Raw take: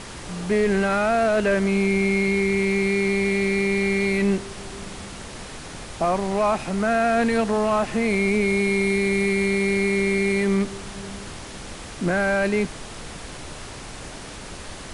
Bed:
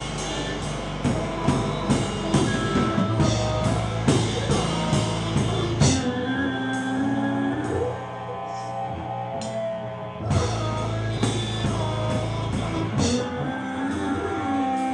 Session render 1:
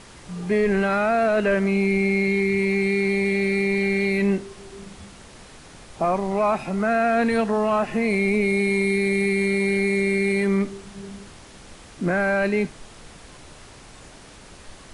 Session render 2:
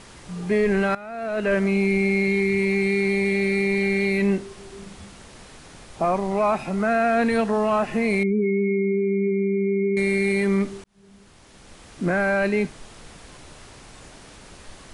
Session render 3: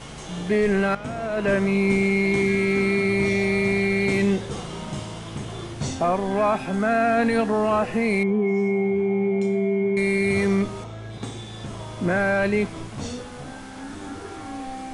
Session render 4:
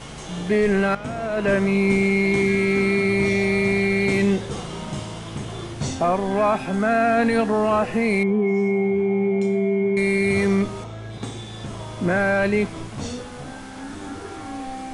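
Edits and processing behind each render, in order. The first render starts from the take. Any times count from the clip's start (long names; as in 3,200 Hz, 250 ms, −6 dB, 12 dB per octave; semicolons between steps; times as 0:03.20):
noise reduction from a noise print 8 dB
0:00.95–0:01.54: fade in quadratic, from −17.5 dB; 0:08.23–0:09.97: expanding power law on the bin magnitudes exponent 3.2; 0:10.84–0:12.04: fade in
mix in bed −10 dB
level +1.5 dB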